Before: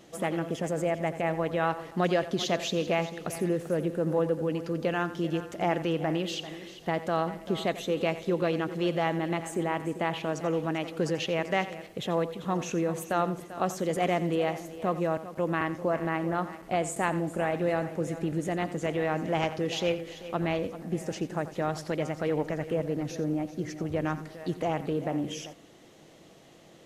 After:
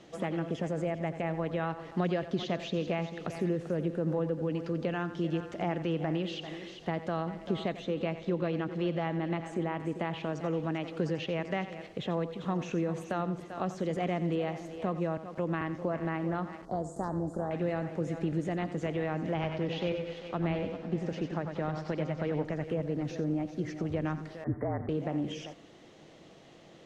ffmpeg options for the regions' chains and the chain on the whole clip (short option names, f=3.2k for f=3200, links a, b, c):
-filter_complex "[0:a]asettb=1/sr,asplit=3[a][b][c];[a]atrim=end=7.774[d];[b]atrim=start=7.77:end=9.8,asetpts=PTS-STARTPTS,afade=t=in:d=0.004:c=qsin,afade=t=out:st=2.026:d=0.004:c=qsin,highshelf=f=7.3k:g=-10,bandreject=f=410:w=12[e];[c]atrim=start=9.796[f];[d][e]acrossfade=d=0.004:c1=hsin:c2=qsin[g];[g][f]acrossfade=d=0.004:c1=qsin:c2=hsin,asettb=1/sr,asplit=3[h][i][j];[h]atrim=end=16.654[k];[i]atrim=start=16.65:end=17.51,asetpts=PTS-STARTPTS,afade=t=in:d=0.004:c=qsin,afade=t=out:st=0.856:d=0.004:c=qsin,volume=16dB,asoftclip=hard,volume=-16dB,tremolo=f=240:d=0.333,asuperstop=centerf=2500:order=4:qfactor=0.68[l];[j]atrim=start=17.506[m];[k][l]acrossfade=d=0.004:c1=hsin:c2=qsin[n];[n][m]acrossfade=d=0.004:c1=qsin:c2=hsin,asettb=1/sr,asplit=3[o][p][q];[o]atrim=end=19.344[r];[p]atrim=start=19.34:end=22.45,asetpts=PTS-STARTPTS,afade=t=in:d=0.004:c=qsin,afade=t=out:st=3.106:d=0.004:c=qsin,lowpass=4.7k,aecho=1:1:96|192|288|384:0.422|0.16|0.0609|0.0231,atrim=end_sample=137151,aeval=exprs='sgn(val(0))*max(abs(val(0))-0.00237,0)':c=same[s];[q]atrim=start=22.446[t];[r][s]acrossfade=d=0.004:c1=hsin:c2=qsin[u];[u][t]acrossfade=d=0.004:c1=qsin:c2=hsin,asettb=1/sr,asplit=3[v][w][x];[v]atrim=end=24.444[y];[w]atrim=start=24.44:end=24.89,asetpts=PTS-STARTPTS,afade=t=in:d=0.004:c=qsin,afade=t=out:st=0.446:d=0.004:c=qsin,asuperstop=centerf=4800:order=20:qfactor=0.61,highshelf=f=9k:g=-12,afreqshift=-42[z];[x]atrim=start=24.886[aa];[y][z]acrossfade=d=0.004:c1=hsin:c2=qsin[ab];[ab][aa]acrossfade=d=0.004:c1=qsin:c2=hsin,acrossover=split=280[ac][ad];[ad]acompressor=threshold=-36dB:ratio=2[ae];[ac][ae]amix=inputs=2:normalize=0,lowpass=5.6k,acrossover=split=3600[af][ag];[ag]acompressor=threshold=-51dB:ratio=4:attack=1:release=60[ah];[af][ah]amix=inputs=2:normalize=0"